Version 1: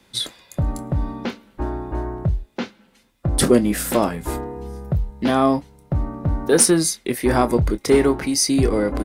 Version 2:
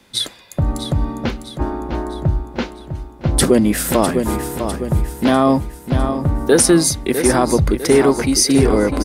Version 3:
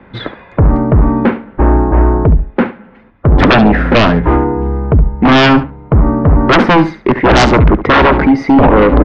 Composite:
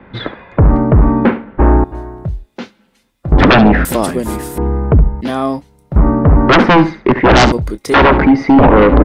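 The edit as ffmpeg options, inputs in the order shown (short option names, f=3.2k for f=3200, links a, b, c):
-filter_complex "[0:a]asplit=3[a][b][c];[2:a]asplit=5[d][e][f][g][h];[d]atrim=end=1.842[i];[a]atrim=start=1.838:end=3.322[j];[e]atrim=start=3.318:end=3.852[k];[1:a]atrim=start=3.848:end=4.582[l];[f]atrim=start=4.578:end=5.212[m];[b]atrim=start=5.208:end=5.962[n];[g]atrim=start=5.958:end=7.522[o];[c]atrim=start=7.518:end=7.942[p];[h]atrim=start=7.938[q];[i][j]acrossfade=d=0.004:c1=hsin:c2=hsin[r];[r][k]acrossfade=d=0.004:c1=hsin:c2=hsin[s];[s][l]acrossfade=d=0.004:c1=hsin:c2=hsin[t];[t][m]acrossfade=d=0.004:c1=hsin:c2=hsin[u];[u][n]acrossfade=d=0.004:c1=hsin:c2=hsin[v];[v][o]acrossfade=d=0.004:c1=hsin:c2=hsin[w];[w][p]acrossfade=d=0.004:c1=hsin:c2=hsin[x];[x][q]acrossfade=d=0.004:c1=hsin:c2=hsin"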